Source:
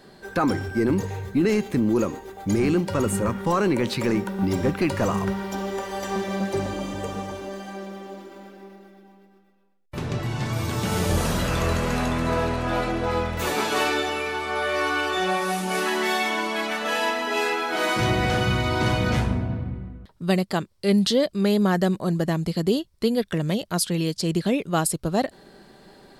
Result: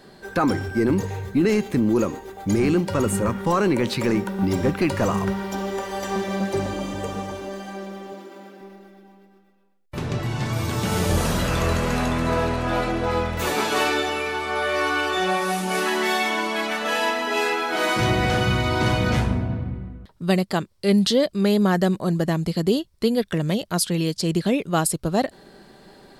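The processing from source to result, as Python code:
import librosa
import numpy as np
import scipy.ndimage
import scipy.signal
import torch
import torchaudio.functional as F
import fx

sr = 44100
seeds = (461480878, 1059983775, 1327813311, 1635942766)

y = fx.highpass(x, sr, hz=170.0, slope=12, at=(8.12, 8.61))
y = F.gain(torch.from_numpy(y), 1.5).numpy()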